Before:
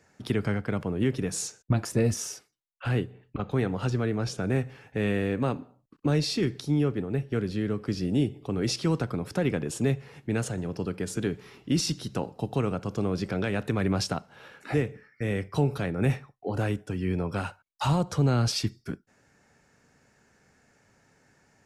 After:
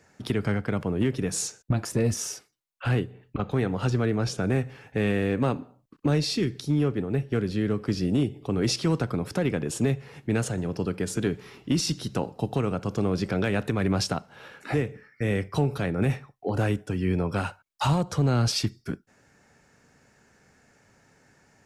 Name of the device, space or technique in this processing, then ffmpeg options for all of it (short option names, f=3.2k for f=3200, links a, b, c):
limiter into clipper: -filter_complex "[0:a]alimiter=limit=-17dB:level=0:latency=1:release=304,asoftclip=type=hard:threshold=-18.5dB,asettb=1/sr,asplit=3[a][b][c];[a]atrim=end=6.354[d];[b]atrim=start=6.35:end=6.82,asetpts=PTS-STARTPTS,afade=t=in:d=0.004:c=qsin,afade=t=out:st=0.466:d=0.004:c=qsin,equalizer=f=880:w=0.73:g=-5.5[e];[c]atrim=start=6.816[f];[d][e]acrossfade=d=0.004:c1=hsin:c2=qsin[g];[g][f]acrossfade=d=0.004:c1=qsin:c2=hsin,volume=3dB"